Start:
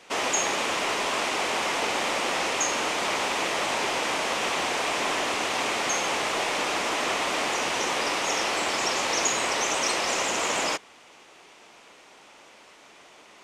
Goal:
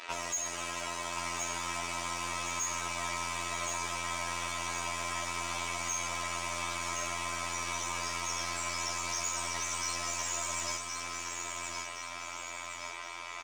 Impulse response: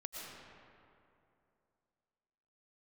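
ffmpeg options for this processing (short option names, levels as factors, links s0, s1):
-filter_complex "[0:a]lowshelf=f=400:g=-7.5,aecho=1:1:3.1:0.72,acrossover=split=6300[s0][s1];[s0]acompressor=threshold=0.0112:ratio=16[s2];[s2][s1]amix=inputs=2:normalize=0,afftfilt=real='hypot(re,im)*cos(PI*b)':imag='0':win_size=2048:overlap=0.75,asplit=2[s3][s4];[s4]adelay=437.3,volume=0.2,highshelf=f=4000:g=-9.84[s5];[s3][s5]amix=inputs=2:normalize=0,asplit=2[s6][s7];[s7]highpass=f=720:p=1,volume=11.2,asoftclip=type=tanh:threshold=0.224[s8];[s6][s8]amix=inputs=2:normalize=0,lowpass=f=2300:p=1,volume=0.501,asplit=2[s9][s10];[s10]aecho=0:1:1069|2138|3207|4276|5345|6414:0.562|0.287|0.146|0.0746|0.038|0.0194[s11];[s9][s11]amix=inputs=2:normalize=0,volume=0.794"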